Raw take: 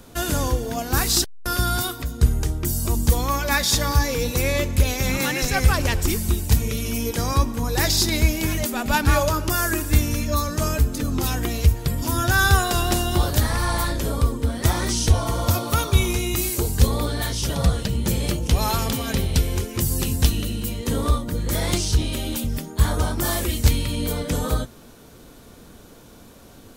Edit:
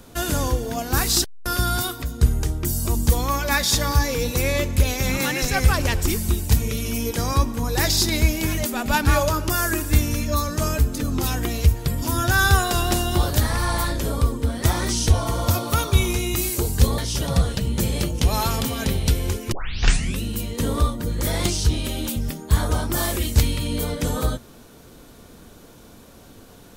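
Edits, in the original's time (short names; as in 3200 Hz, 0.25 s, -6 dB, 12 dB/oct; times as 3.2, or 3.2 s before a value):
16.98–17.26 cut
19.8 tape start 0.71 s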